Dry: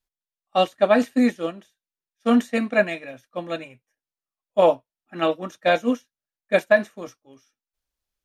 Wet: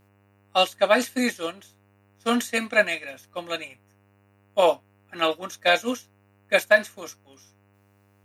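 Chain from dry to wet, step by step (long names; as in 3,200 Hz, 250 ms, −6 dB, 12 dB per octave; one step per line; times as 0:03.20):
spectral tilt +3.5 dB per octave
hum with harmonics 100 Hz, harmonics 29, −61 dBFS −5 dB per octave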